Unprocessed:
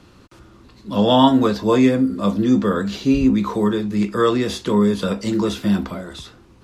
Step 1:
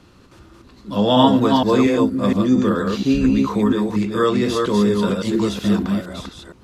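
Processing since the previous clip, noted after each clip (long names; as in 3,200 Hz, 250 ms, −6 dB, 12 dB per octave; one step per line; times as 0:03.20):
delay that plays each chunk backwards 233 ms, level −3 dB
level −1 dB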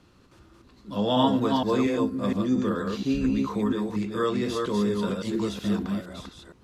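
tuned comb filter 150 Hz, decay 0.7 s, harmonics odd, mix 40%
level −4 dB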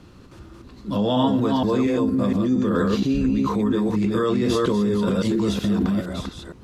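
low-shelf EQ 450 Hz +5.5 dB
in parallel at 0 dB: compressor whose output falls as the input rises −26 dBFS, ratio −0.5
on the sum: level −2 dB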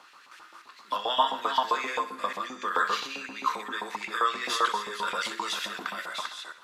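auto-filter high-pass saw up 7.6 Hz 840–2,300 Hz
feedback echo with a high-pass in the loop 63 ms, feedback 55%, level −13.5 dB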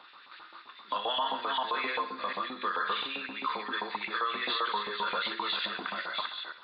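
hearing-aid frequency compression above 3,400 Hz 4 to 1
brickwall limiter −21.5 dBFS, peak gain reduction 10.5 dB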